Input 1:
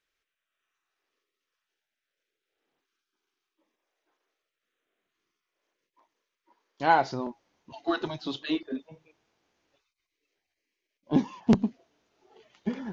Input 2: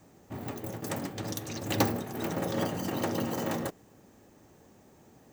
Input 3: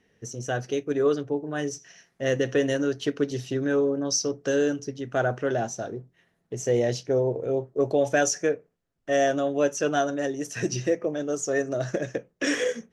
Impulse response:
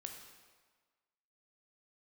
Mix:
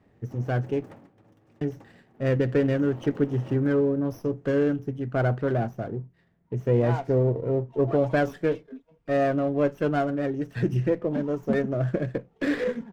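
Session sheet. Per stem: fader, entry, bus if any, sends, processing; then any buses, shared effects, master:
-10.5 dB, 0.00 s, no send, comb 4.3 ms, depth 57%
0.87 s -6 dB -> 1.17 s -19 dB -> 2.49 s -19 dB -> 2.8 s -7 dB, 0.00 s, no send, high shelf 4100 Hz -10 dB; compressor 1.5:1, threshold -40 dBFS, peak gain reduction 7.5 dB
-1.5 dB, 0.00 s, muted 0.86–1.61, no send, tone controls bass +10 dB, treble -14 dB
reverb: off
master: Butterworth band-stop 4200 Hz, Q 2.5; high shelf 5700 Hz -12 dB; running maximum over 5 samples

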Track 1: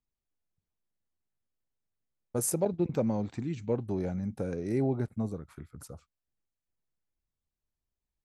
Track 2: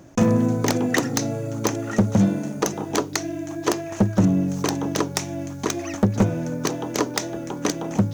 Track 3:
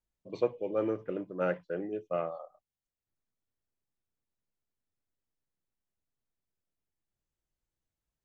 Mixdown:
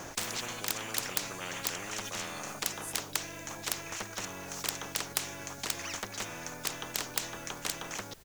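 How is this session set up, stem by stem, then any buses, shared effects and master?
-15.5 dB, 0.40 s, no send, auto swell 0.326 s
+2.0 dB, 0.00 s, no send, auto duck -11 dB, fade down 0.50 s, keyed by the third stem
+2.0 dB, 0.00 s, no send, de-hum 274.5 Hz, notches 39; gate -50 dBFS, range -19 dB; fast leveller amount 70%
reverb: off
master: spectral compressor 10:1

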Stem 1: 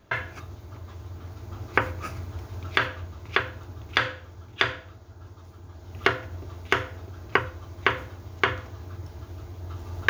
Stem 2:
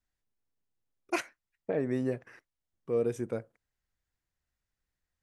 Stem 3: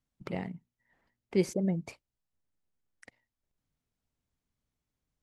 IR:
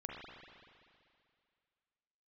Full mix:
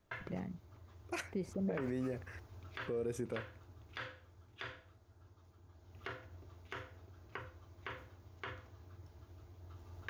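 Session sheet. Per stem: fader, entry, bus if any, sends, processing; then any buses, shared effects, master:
-17.0 dB, 0.00 s, no bus, no send, dry
+1.0 dB, 0.00 s, bus A, no send, dry
-9.5 dB, 0.00 s, bus A, no send, tilt -2 dB/oct
bus A: 0.0 dB, compressor, threshold -30 dBFS, peak gain reduction 7 dB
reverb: off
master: limiter -29.5 dBFS, peak gain reduction 9.5 dB

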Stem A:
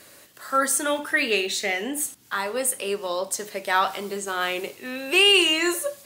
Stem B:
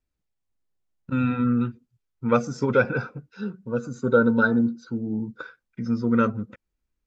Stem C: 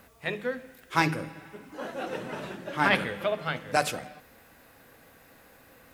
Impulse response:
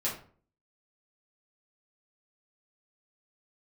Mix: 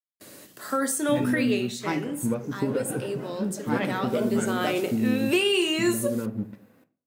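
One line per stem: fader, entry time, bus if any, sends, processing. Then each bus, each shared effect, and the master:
1.2 s -4 dB -> 1.79 s -15.5 dB -> 3.82 s -15.5 dB -> 4.62 s -4 dB, 0.20 s, bus A, send -21.5 dB, high shelf 3100 Hz +6 dB
-8.0 dB, 0.00 s, bus A, send -11.5 dB, notch 1300 Hz, Q 5.4; compressor, threshold -27 dBFS, peak gain reduction 13 dB; crossover distortion -46.5 dBFS
-12.5 dB, 0.90 s, no bus, send -13.5 dB, HPF 150 Hz
bus A: 0.0 dB, gate with hold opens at -40 dBFS; compressor 3:1, threshold -30 dBFS, peak gain reduction 11.5 dB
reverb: on, RT60 0.45 s, pre-delay 4 ms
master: bell 240 Hz +13.5 dB 2.6 oct

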